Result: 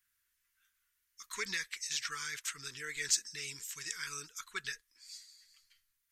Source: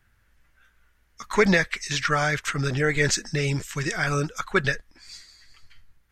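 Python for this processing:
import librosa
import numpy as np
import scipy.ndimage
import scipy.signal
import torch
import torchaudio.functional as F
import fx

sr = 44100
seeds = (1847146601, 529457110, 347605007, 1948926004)

y = scipy.signal.sosfilt(scipy.signal.ellip(3, 1.0, 40, [460.0, 960.0], 'bandstop', fs=sr, output='sos'), x)
y = scipy.signal.lfilter([1.0, -0.97], [1.0], y)
y = F.gain(torch.from_numpy(y), -3.0).numpy()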